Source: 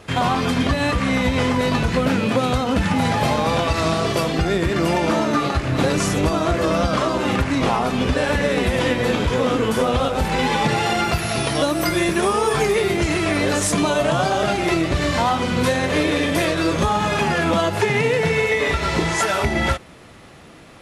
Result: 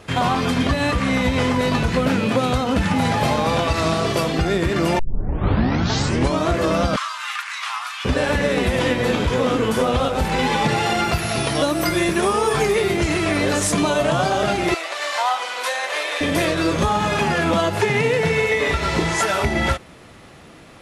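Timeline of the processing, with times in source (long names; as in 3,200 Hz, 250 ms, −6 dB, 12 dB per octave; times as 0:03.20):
0:04.99: tape start 1.46 s
0:06.96–0:08.05: Butterworth high-pass 1,100 Hz
0:14.74–0:16.21: high-pass filter 640 Hz 24 dB per octave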